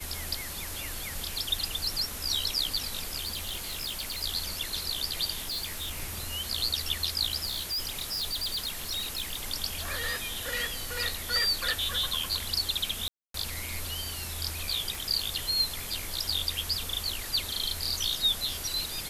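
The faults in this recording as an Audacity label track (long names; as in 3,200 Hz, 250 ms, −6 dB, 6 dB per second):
3.240000	4.240000	clipping −30 dBFS
5.440000	6.030000	clipping −30 dBFS
7.450000	9.370000	clipping −28.5 dBFS
13.080000	13.340000	drop-out 263 ms
14.950000	14.950000	click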